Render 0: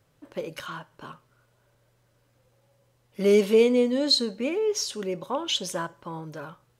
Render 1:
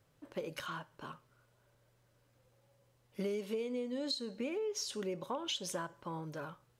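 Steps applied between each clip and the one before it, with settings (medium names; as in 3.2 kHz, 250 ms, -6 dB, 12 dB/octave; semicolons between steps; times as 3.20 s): compression 16:1, threshold -29 dBFS, peak gain reduction 15.5 dB; trim -5 dB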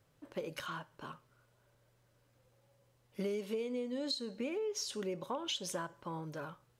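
no audible change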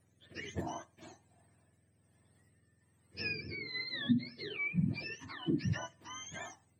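spectrum inverted on a logarithmic axis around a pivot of 1 kHz; rotary cabinet horn 1.2 Hz; trim +3.5 dB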